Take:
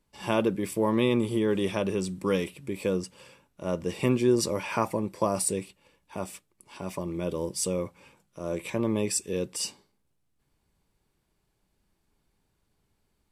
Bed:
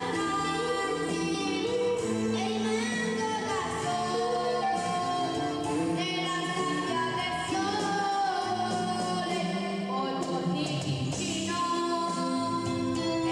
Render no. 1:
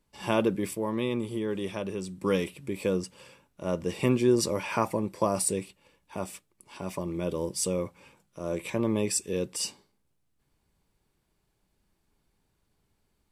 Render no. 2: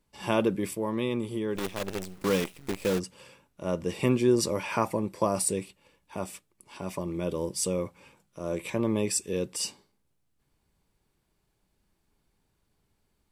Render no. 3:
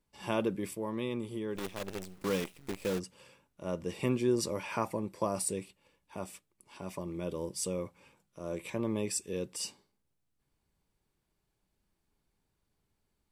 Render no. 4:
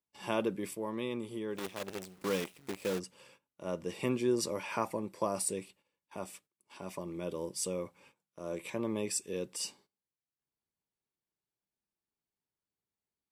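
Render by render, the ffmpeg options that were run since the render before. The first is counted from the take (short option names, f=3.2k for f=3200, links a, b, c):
-filter_complex "[0:a]asplit=3[a][b][c];[a]atrim=end=0.752[d];[b]atrim=start=0.748:end=2.222,asetpts=PTS-STARTPTS,volume=-5.5dB[e];[c]atrim=start=2.218[f];[d][e]acrossfade=d=0.004:c1=hsin:c2=hsin[g];[g][f]acrossfade=d=0.004:c1=hsin:c2=hsin"
-filter_complex "[0:a]asplit=3[a][b][c];[a]afade=t=out:st=1.55:d=0.02[d];[b]acrusher=bits=6:dc=4:mix=0:aa=0.000001,afade=t=in:st=1.55:d=0.02,afade=t=out:st=2.98:d=0.02[e];[c]afade=t=in:st=2.98:d=0.02[f];[d][e][f]amix=inputs=3:normalize=0"
-af "volume=-6dB"
-af "agate=range=-14dB:threshold=-60dB:ratio=16:detection=peak,highpass=f=190:p=1"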